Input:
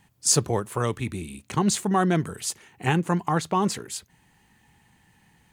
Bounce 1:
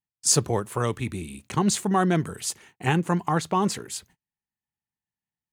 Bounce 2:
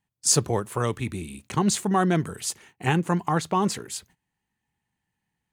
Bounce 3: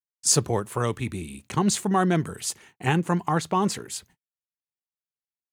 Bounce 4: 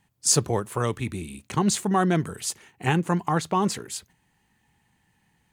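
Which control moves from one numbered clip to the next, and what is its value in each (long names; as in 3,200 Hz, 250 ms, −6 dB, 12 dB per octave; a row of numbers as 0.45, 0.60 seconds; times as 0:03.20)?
noise gate, range: −37, −21, −55, −7 decibels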